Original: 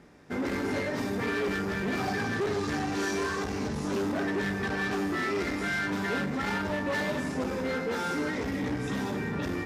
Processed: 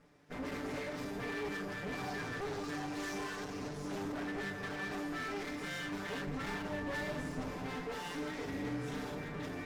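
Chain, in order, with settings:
lower of the sound and its delayed copy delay 6.8 ms
0:06.27–0:07.84: low-shelf EQ 150 Hz +7.5 dB
0:08.34–0:09.15: double-tracking delay 41 ms −6 dB
level −8.5 dB

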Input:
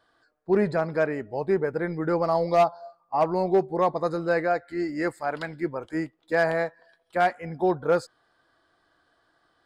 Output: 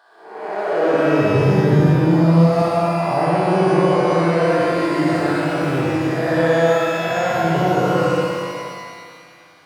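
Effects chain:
spectrum smeared in time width 358 ms
0:01.34–0:02.62: bass and treble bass +14 dB, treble +11 dB
in parallel at −0.5 dB: downward compressor, threshold −38 dBFS, peak gain reduction 17.5 dB
on the sum: brickwall limiter −21 dBFS, peak gain reduction 9.5 dB
high-pass filter sweep 780 Hz → 120 Hz, 0:00.62–0:01.14
on a send: flutter between parallel walls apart 10.3 metres, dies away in 1.2 s
on the sum: reverb with rising layers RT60 1.9 s, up +12 semitones, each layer −8 dB, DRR −0.5 dB
level +5 dB

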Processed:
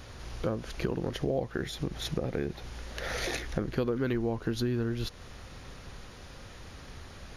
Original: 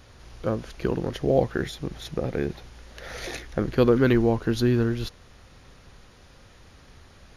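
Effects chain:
downward compressor 4 to 1, threshold −34 dBFS, peak gain reduction 16.5 dB
level +4.5 dB

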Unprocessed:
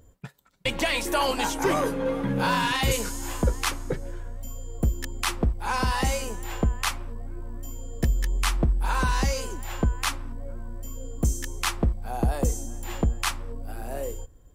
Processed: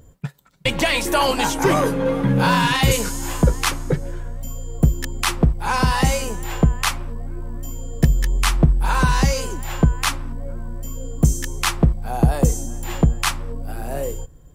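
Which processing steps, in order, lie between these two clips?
parametric band 150 Hz +10.5 dB 0.39 octaves
level +6 dB

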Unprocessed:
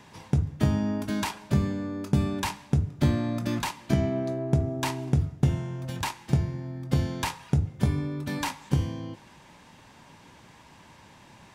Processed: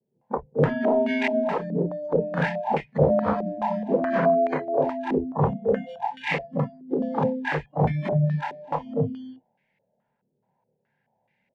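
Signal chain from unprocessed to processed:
every overlapping window played backwards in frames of 54 ms
in parallel at −11 dB: log-companded quantiser 4 bits
on the sum: phaser with its sweep stopped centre 310 Hz, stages 6
wave folding −24.5 dBFS
high-pass filter 97 Hz 6 dB per octave
on a send: loudspeakers that aren't time-aligned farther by 73 metres −8 dB, 85 metres −1 dB, 98 metres −9 dB
on the sum: noise reduction from a noise print of the clip's start 29 dB
low-pass on a step sequencer 4.7 Hz 370–2,100 Hz
level +7 dB

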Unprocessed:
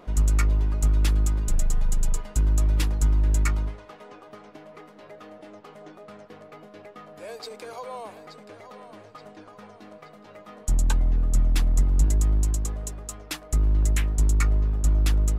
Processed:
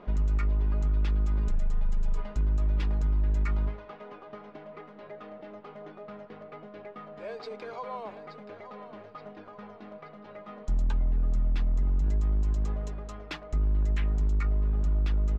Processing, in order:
comb filter 4.9 ms, depth 33%
brickwall limiter −20 dBFS, peak gain reduction 9.5 dB
high-frequency loss of the air 230 metres

